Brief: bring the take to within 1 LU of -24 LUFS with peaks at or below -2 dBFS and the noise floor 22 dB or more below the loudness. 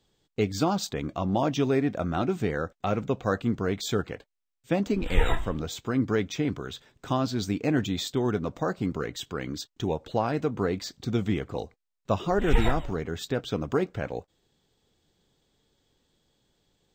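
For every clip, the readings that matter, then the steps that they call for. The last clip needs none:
loudness -29.0 LUFS; peak level -8.0 dBFS; loudness target -24.0 LUFS
-> trim +5 dB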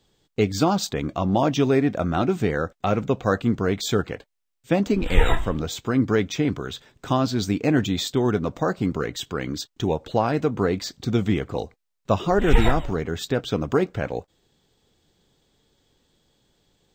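loudness -24.0 LUFS; peak level -3.0 dBFS; noise floor -76 dBFS

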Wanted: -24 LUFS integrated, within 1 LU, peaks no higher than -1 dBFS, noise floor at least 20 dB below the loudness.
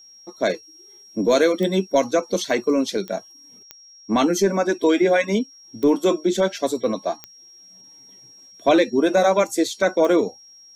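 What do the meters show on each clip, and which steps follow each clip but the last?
clicks found 6; steady tone 5.6 kHz; tone level -45 dBFS; loudness -20.5 LUFS; peak level -6.5 dBFS; loudness target -24.0 LUFS
-> de-click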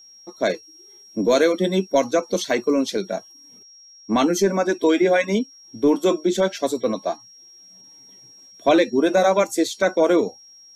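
clicks found 0; steady tone 5.6 kHz; tone level -45 dBFS
-> band-stop 5.6 kHz, Q 30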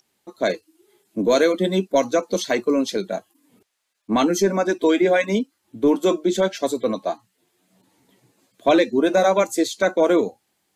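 steady tone not found; loudness -20.5 LUFS; peak level -6.5 dBFS; loudness target -24.0 LUFS
-> trim -3.5 dB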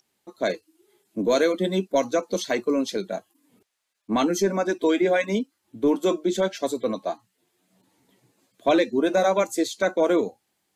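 loudness -24.0 LUFS; peak level -10.0 dBFS; noise floor -75 dBFS

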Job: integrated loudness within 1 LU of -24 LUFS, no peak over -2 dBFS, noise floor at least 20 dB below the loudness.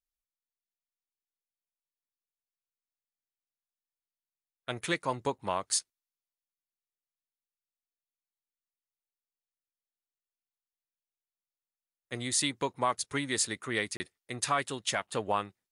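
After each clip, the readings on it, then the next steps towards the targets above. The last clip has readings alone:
dropouts 1; longest dropout 30 ms; loudness -32.0 LUFS; peak level -16.5 dBFS; loudness target -24.0 LUFS
-> interpolate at 13.97 s, 30 ms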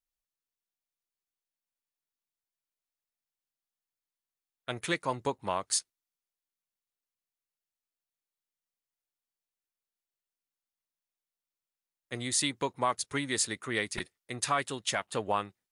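dropouts 0; loudness -32.0 LUFS; peak level -16.5 dBFS; loudness target -24.0 LUFS
-> trim +8 dB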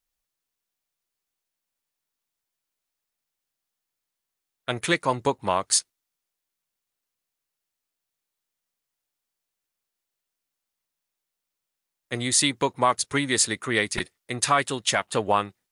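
loudness -24.0 LUFS; peak level -8.5 dBFS; noise floor -85 dBFS

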